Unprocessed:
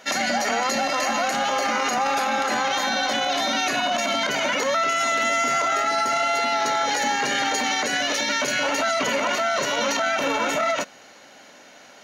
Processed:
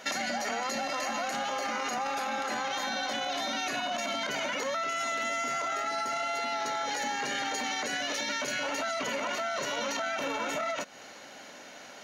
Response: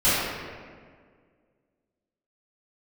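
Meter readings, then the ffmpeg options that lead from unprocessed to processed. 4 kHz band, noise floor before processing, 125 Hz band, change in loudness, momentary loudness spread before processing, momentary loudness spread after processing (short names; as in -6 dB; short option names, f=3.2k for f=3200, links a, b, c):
-9.0 dB, -48 dBFS, -9.0 dB, -9.5 dB, 2 LU, 2 LU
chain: -af "acompressor=threshold=-30dB:ratio=6"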